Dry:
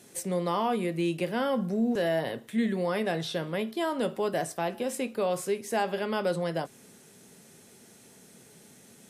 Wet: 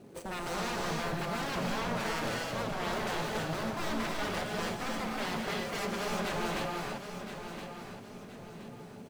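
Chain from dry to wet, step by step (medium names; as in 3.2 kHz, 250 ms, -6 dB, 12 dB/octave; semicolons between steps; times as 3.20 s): median filter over 25 samples; in parallel at -1.5 dB: compression, threshold -44 dBFS, peak gain reduction 19 dB; on the sum: wavefolder -32.5 dBFS; on a send: feedback delay 1019 ms, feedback 36%, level -9.5 dB; on the sum: gated-style reverb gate 350 ms rising, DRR -1 dB; endings held to a fixed fall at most 200 dB/s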